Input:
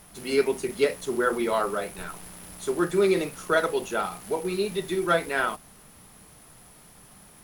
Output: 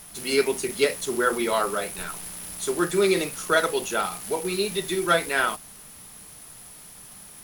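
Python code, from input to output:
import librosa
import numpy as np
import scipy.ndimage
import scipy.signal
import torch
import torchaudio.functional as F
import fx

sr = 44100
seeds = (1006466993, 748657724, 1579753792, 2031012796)

y = fx.high_shelf(x, sr, hz=2200.0, db=9.0)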